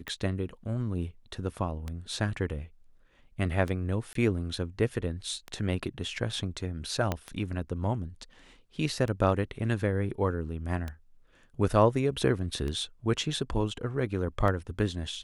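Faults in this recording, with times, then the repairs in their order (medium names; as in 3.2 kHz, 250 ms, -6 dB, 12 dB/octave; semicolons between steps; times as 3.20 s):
tick 33 1/3 rpm -21 dBFS
4.13–4.15 s: dropout 23 ms
7.12 s: pop -14 dBFS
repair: de-click; interpolate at 4.13 s, 23 ms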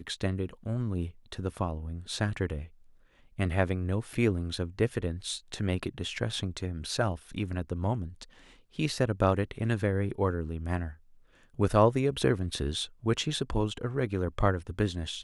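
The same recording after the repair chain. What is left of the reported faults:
7.12 s: pop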